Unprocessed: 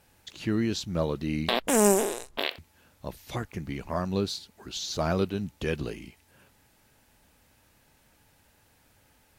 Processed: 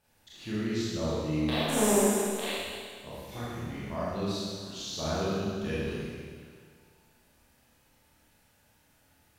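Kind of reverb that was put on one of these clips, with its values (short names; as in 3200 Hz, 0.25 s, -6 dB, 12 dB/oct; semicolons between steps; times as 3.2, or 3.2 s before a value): Schroeder reverb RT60 1.9 s, combs from 26 ms, DRR -9.5 dB; gain -12 dB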